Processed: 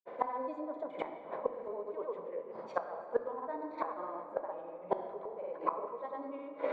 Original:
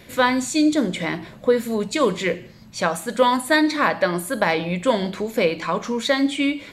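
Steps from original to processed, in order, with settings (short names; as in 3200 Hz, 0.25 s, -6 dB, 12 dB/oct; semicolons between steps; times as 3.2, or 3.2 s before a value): Chebyshev band-pass 480–1000 Hz, order 2; reverse; compressor 12:1, threshold -29 dBFS, peak gain reduction 17.5 dB; reverse; grains 0.1 s, grains 20/s, spray 0.1 s, pitch spread up and down by 0 st; flipped gate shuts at -33 dBFS, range -24 dB; tremolo triangle 0.59 Hz, depth 35%; on a send: reverb RT60 3.4 s, pre-delay 6 ms, DRR 7.5 dB; on the sum: gain +18 dB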